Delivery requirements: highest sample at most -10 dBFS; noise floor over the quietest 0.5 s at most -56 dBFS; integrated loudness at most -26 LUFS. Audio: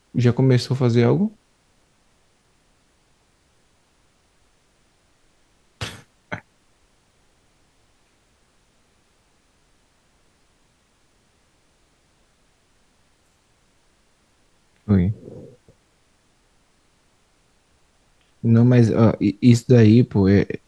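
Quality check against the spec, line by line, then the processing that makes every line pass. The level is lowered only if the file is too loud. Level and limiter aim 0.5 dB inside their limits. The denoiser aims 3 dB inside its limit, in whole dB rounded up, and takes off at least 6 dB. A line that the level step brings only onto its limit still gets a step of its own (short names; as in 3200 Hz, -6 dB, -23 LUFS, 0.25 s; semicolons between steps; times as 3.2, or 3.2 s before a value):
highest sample -2.0 dBFS: fail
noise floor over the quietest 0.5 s -62 dBFS: OK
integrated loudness -17.5 LUFS: fail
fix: gain -9 dB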